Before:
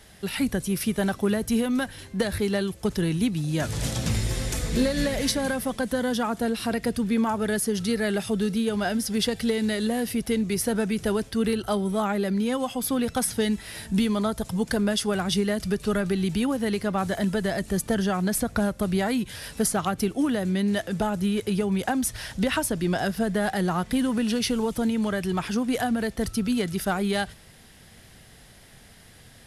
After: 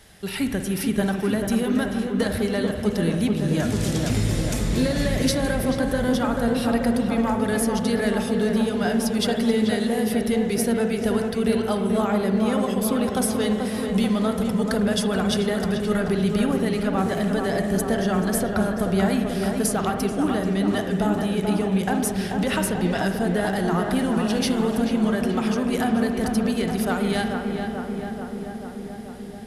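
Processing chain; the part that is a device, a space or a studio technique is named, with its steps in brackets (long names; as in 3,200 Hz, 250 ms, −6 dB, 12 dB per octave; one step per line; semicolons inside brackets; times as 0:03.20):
dub delay into a spring reverb (feedback echo with a low-pass in the loop 436 ms, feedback 76%, low-pass 1,900 Hz, level −4.5 dB; spring reverb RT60 1.5 s, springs 47 ms, chirp 35 ms, DRR 6.5 dB)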